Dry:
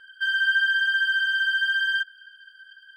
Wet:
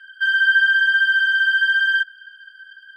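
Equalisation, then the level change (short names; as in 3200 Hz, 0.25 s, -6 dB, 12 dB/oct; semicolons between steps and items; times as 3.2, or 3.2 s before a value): resonant high-pass 1700 Hz, resonance Q 2.4; 0.0 dB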